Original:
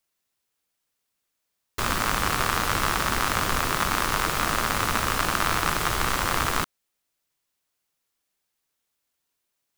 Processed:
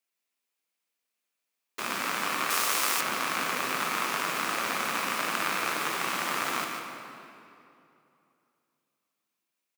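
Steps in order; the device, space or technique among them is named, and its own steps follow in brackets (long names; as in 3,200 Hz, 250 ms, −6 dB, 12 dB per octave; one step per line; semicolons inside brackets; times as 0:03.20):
PA in a hall (high-pass filter 190 Hz 24 dB per octave; parametric band 2,400 Hz +6 dB 0.4 octaves; single-tap delay 149 ms −8 dB; convolution reverb RT60 2.8 s, pre-delay 20 ms, DRR 3.5 dB)
0:02.50–0:03.01: bass and treble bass −10 dB, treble +10 dB
level −7.5 dB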